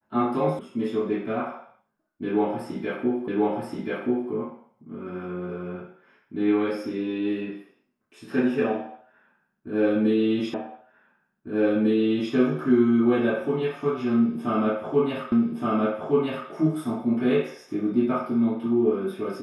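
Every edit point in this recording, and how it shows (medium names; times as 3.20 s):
0.59 s: sound stops dead
3.28 s: repeat of the last 1.03 s
10.54 s: repeat of the last 1.8 s
15.32 s: repeat of the last 1.17 s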